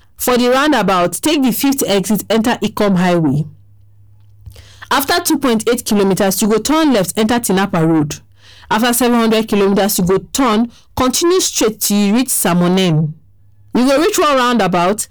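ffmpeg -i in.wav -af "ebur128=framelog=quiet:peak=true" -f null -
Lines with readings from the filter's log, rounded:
Integrated loudness:
  I:         -13.6 LUFS
  Threshold: -24.1 LUFS
Loudness range:
  LRA:         3.1 LU
  Threshold: -34.3 LUFS
  LRA low:   -16.5 LUFS
  LRA high:  -13.4 LUFS
True peak:
  Peak:       -6.0 dBFS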